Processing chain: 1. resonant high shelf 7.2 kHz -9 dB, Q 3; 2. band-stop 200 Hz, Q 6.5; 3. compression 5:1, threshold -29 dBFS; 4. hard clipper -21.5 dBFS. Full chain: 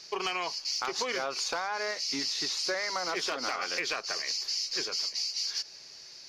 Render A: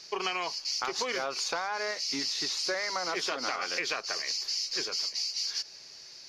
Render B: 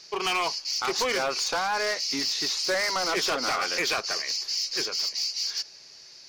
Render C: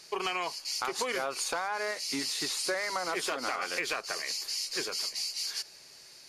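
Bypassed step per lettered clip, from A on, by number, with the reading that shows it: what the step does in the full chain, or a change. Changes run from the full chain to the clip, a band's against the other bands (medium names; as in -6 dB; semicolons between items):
4, distortion -26 dB; 3, 125 Hz band +2.0 dB; 1, loudness change -1.0 LU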